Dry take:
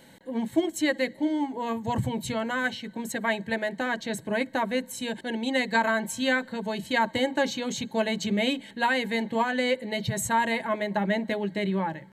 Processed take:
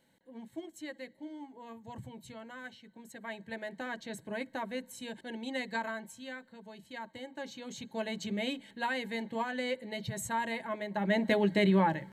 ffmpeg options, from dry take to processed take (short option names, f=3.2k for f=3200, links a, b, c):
-af "volume=10.5dB,afade=t=in:st=3.11:d=0.66:silence=0.421697,afade=t=out:st=5.68:d=0.55:silence=0.375837,afade=t=in:st=7.29:d=0.86:silence=0.316228,afade=t=in:st=10.94:d=0.43:silence=0.281838"